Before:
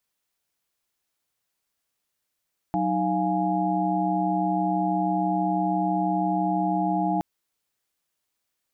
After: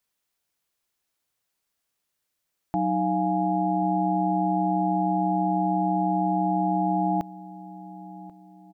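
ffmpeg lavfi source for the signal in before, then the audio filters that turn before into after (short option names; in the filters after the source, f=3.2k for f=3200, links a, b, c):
-f lavfi -i "aevalsrc='0.0447*(sin(2*PI*185*t)+sin(2*PI*311.13*t)+sin(2*PI*698.46*t)+sin(2*PI*830.61*t))':d=4.47:s=44100"
-filter_complex "[0:a]asplit=2[a][b];[b]adelay=1087,lowpass=f=920:p=1,volume=-17dB,asplit=2[c][d];[d]adelay=1087,lowpass=f=920:p=1,volume=0.41,asplit=2[e][f];[f]adelay=1087,lowpass=f=920:p=1,volume=0.41[g];[a][c][e][g]amix=inputs=4:normalize=0"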